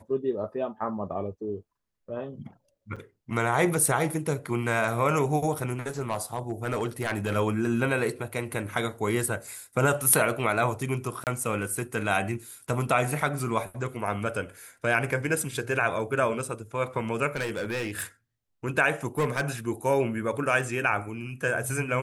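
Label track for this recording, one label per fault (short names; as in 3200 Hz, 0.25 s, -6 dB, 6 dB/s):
2.960000	2.970000	gap 5.8 ms
6.000000	7.370000	clipped -22 dBFS
11.240000	11.270000	gap 28 ms
17.350000	18.030000	clipped -26 dBFS
19.180000	19.500000	clipped -21 dBFS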